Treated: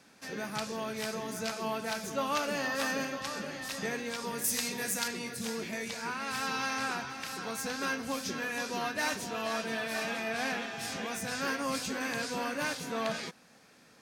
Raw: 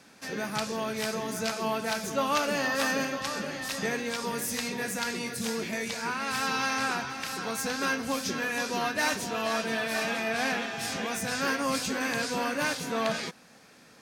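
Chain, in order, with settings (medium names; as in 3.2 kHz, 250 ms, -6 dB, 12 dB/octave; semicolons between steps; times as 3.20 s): 4.44–5.08 s: treble shelf 4.5 kHz +10 dB; trim -4.5 dB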